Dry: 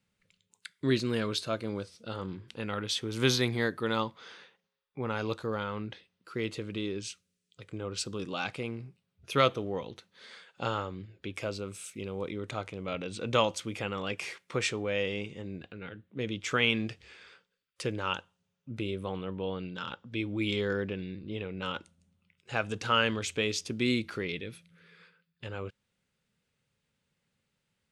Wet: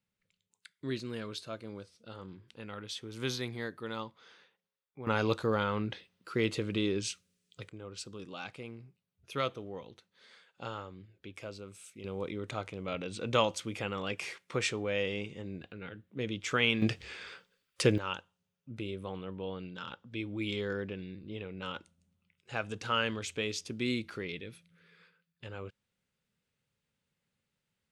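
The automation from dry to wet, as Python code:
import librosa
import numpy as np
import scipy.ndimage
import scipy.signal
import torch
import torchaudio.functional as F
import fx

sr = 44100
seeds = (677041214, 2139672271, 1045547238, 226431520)

y = fx.gain(x, sr, db=fx.steps((0.0, -9.0), (5.07, 3.5), (7.69, -8.5), (12.04, -1.5), (16.82, 7.5), (17.98, -4.5)))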